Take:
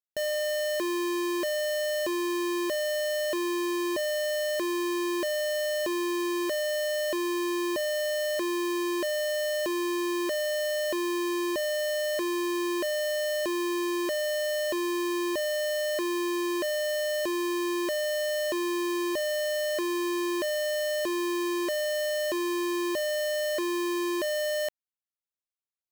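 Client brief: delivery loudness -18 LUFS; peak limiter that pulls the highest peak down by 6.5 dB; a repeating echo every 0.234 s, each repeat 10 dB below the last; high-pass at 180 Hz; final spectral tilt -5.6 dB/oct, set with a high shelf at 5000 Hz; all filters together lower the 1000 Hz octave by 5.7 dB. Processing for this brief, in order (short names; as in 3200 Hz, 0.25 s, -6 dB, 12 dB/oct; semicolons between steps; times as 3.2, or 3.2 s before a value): HPF 180 Hz; bell 1000 Hz -5.5 dB; high shelf 5000 Hz -8 dB; limiter -31.5 dBFS; feedback echo 0.234 s, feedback 32%, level -10 dB; gain +16.5 dB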